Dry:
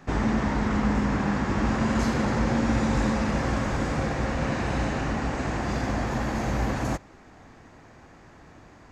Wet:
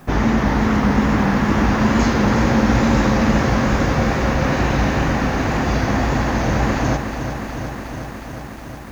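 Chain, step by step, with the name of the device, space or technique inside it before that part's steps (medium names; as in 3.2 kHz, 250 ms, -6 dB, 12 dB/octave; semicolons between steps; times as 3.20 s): elliptic low-pass 6.6 kHz, stop band 40 dB; plain cassette with noise reduction switched in (tape noise reduction on one side only decoder only; wow and flutter; white noise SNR 38 dB); bit-crushed delay 363 ms, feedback 80%, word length 9-bit, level -9 dB; trim +8.5 dB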